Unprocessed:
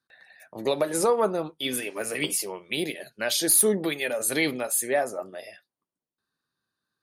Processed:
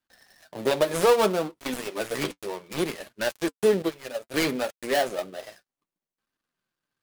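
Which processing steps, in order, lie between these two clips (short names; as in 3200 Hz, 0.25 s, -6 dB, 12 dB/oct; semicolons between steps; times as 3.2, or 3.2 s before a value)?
switching dead time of 0.19 ms; flange 0.63 Hz, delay 2.9 ms, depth 5.9 ms, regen -45%; 3.82–4.34 upward expander 2.5:1, over -36 dBFS; gain +6.5 dB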